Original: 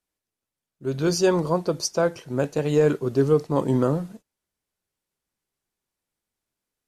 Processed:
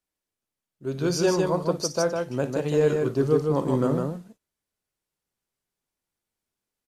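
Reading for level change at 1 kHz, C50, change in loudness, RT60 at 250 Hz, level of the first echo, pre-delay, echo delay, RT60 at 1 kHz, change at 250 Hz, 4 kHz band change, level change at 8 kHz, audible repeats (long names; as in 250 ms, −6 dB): −1.5 dB, no reverb audible, −1.5 dB, no reverb audible, −14.0 dB, no reverb audible, 57 ms, no reverb audible, −1.5 dB, −1.5 dB, −1.5 dB, 2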